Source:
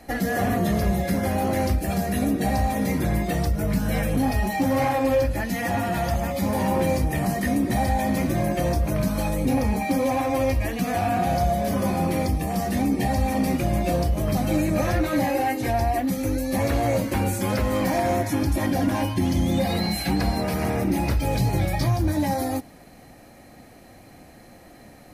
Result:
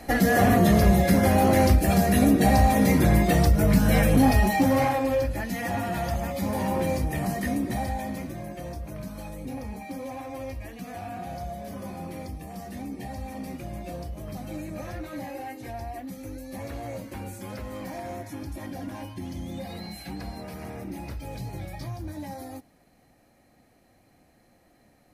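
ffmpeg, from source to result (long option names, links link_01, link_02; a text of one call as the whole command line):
ffmpeg -i in.wav -af "volume=4dB,afade=type=out:start_time=4.3:duration=0.77:silence=0.398107,afade=type=out:start_time=7.46:duration=0.91:silence=0.334965" out.wav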